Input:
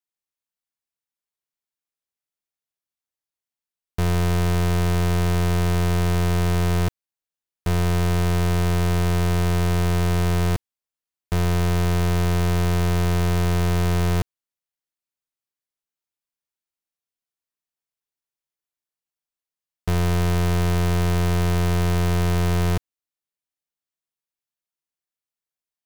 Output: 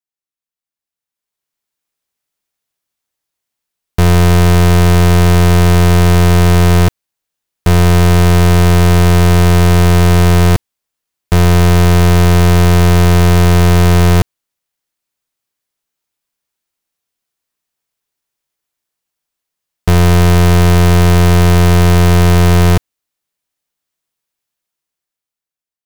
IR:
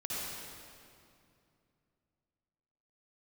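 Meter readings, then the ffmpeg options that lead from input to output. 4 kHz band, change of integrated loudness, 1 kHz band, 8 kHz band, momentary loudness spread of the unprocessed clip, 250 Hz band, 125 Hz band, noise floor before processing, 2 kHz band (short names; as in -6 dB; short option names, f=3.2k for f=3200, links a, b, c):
+12.5 dB, +12.5 dB, +12.5 dB, +12.5 dB, 4 LU, +12.5 dB, +12.5 dB, under -85 dBFS, +12.5 dB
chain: -af "dynaudnorm=f=300:g=9:m=15dB,volume=-2dB"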